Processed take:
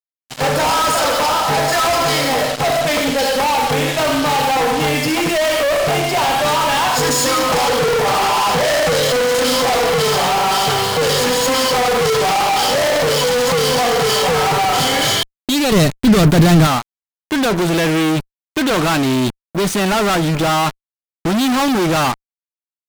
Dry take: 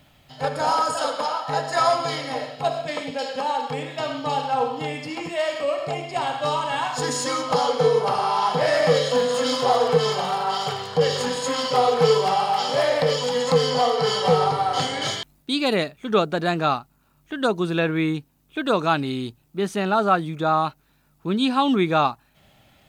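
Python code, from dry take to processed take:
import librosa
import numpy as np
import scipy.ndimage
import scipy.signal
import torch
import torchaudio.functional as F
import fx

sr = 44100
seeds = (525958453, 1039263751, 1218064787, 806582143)

y = fx.fuzz(x, sr, gain_db=41.0, gate_db=-39.0)
y = fx.bass_treble(y, sr, bass_db=13, treble_db=3, at=(15.72, 16.67))
y = F.gain(torch.from_numpy(y), -1.0).numpy()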